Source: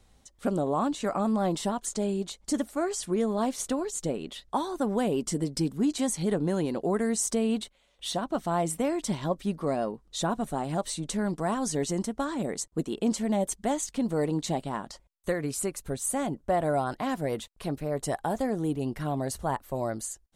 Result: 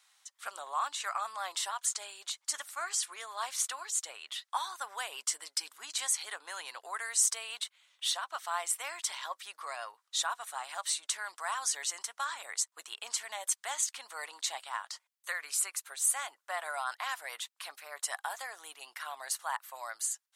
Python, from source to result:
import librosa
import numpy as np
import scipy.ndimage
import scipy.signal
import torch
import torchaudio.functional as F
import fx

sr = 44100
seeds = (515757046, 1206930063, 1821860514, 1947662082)

y = scipy.signal.sosfilt(scipy.signal.butter(4, 1100.0, 'highpass', fs=sr, output='sos'), x)
y = y * 10.0 ** (3.0 / 20.0)